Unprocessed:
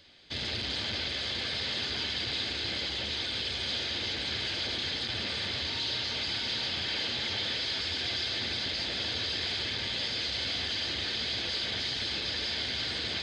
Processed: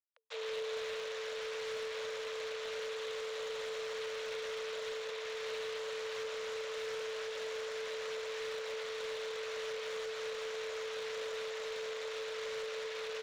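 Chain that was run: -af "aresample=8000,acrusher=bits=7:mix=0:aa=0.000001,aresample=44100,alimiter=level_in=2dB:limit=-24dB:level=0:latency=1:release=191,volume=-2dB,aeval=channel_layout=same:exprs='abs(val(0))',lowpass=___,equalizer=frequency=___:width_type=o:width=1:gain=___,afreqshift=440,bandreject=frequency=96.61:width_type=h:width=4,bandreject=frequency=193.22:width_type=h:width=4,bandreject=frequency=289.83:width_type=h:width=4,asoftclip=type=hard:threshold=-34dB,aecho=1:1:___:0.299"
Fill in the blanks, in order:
3.1k, 320, -11.5, 424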